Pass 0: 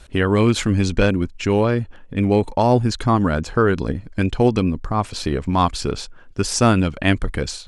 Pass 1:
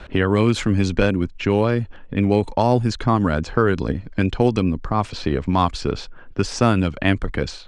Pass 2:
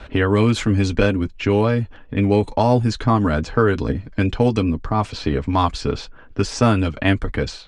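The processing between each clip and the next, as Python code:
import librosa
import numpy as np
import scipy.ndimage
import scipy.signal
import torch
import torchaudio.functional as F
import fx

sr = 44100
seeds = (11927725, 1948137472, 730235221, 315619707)

y1 = fx.env_lowpass(x, sr, base_hz=2800.0, full_db=-11.0)
y1 = fx.high_shelf(y1, sr, hz=9400.0, db=-5.5)
y1 = fx.band_squash(y1, sr, depth_pct=40)
y1 = F.gain(torch.from_numpy(y1), -1.0).numpy()
y2 = fx.notch_comb(y1, sr, f0_hz=180.0)
y2 = F.gain(torch.from_numpy(y2), 2.0).numpy()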